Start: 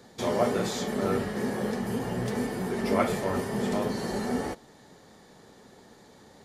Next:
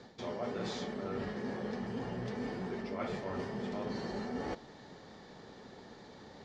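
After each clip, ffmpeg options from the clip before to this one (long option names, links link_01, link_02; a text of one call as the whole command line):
ffmpeg -i in.wav -af "lowpass=frequency=5500:width=0.5412,lowpass=frequency=5500:width=1.3066,areverse,acompressor=threshold=-37dB:ratio=6,areverse,volume=1dB" out.wav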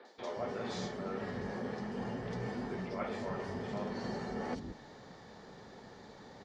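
ffmpeg -i in.wav -filter_complex "[0:a]acrossover=split=310|3400[link_01][link_02][link_03];[link_03]adelay=50[link_04];[link_01]adelay=180[link_05];[link_05][link_02][link_04]amix=inputs=3:normalize=0,volume=1dB" out.wav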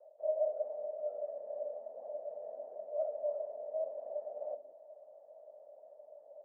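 ffmpeg -i in.wav -af "flanger=delay=0.7:depth=9.6:regen=-55:speed=0.99:shape=triangular,afreqshift=19,asuperpass=centerf=610:order=4:qfactor=7.6,volume=15dB" out.wav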